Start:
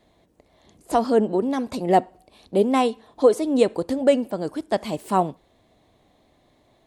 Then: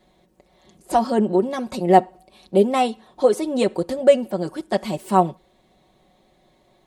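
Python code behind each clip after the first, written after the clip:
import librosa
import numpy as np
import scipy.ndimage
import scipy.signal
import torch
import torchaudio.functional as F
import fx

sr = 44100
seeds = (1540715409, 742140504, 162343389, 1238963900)

y = x + 0.71 * np.pad(x, (int(5.4 * sr / 1000.0), 0))[:len(x)]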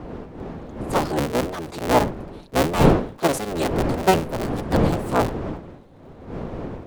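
y = fx.cycle_switch(x, sr, every=3, mode='inverted')
y = fx.dmg_wind(y, sr, seeds[0], corner_hz=410.0, level_db=-22.0)
y = fx.sustainer(y, sr, db_per_s=120.0)
y = F.gain(torch.from_numpy(y), -4.5).numpy()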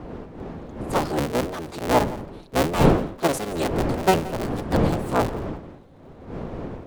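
y = x + 10.0 ** (-18.5 / 20.0) * np.pad(x, (int(172 * sr / 1000.0), 0))[:len(x)]
y = F.gain(torch.from_numpy(y), -1.5).numpy()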